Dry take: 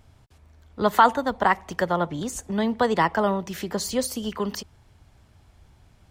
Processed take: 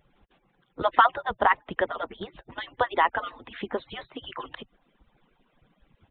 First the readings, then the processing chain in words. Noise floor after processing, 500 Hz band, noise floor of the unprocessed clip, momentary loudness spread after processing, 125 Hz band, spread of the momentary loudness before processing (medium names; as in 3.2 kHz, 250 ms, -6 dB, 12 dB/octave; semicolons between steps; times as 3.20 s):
-70 dBFS, -5.5 dB, -57 dBFS, 18 LU, -13.5 dB, 12 LU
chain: harmonic-percussive separation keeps percussive; resampled via 8 kHz